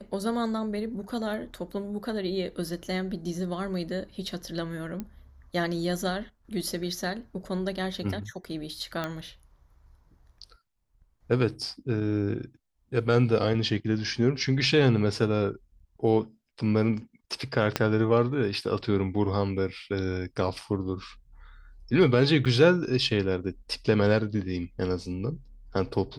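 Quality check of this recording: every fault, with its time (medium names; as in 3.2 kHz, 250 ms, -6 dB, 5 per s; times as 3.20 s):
5.00 s: pop -21 dBFS
9.04 s: pop -17 dBFS
17.76 s: pop -9 dBFS
22.45–22.46 s: dropout 7.3 ms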